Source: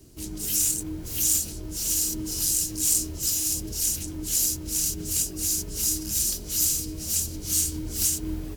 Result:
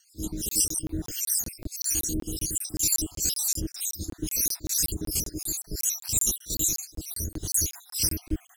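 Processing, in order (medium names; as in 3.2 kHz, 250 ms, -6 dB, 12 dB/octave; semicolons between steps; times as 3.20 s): random holes in the spectrogram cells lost 69%; rotary cabinet horn 6.3 Hz, later 0.65 Hz, at 0.51 s; pre-echo 37 ms -18 dB; crackling interface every 0.19 s, samples 1024, zero, from 0.49 s; trim +6.5 dB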